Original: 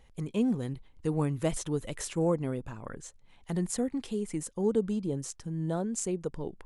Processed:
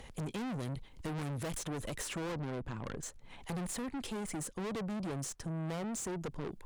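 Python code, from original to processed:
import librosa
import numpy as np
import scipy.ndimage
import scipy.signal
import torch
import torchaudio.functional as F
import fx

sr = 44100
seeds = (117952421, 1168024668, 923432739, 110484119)

y = fx.lowpass(x, sr, hz=1900.0, slope=6, at=(2.26, 3.03))
y = fx.tube_stage(y, sr, drive_db=42.0, bias=0.3)
y = fx.band_squash(y, sr, depth_pct=40)
y = y * librosa.db_to_amplitude(5.5)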